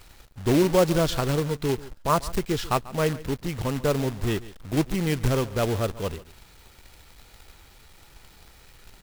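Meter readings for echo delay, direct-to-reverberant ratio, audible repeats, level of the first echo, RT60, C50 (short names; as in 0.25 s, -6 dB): 0.141 s, none, 1, -18.5 dB, none, none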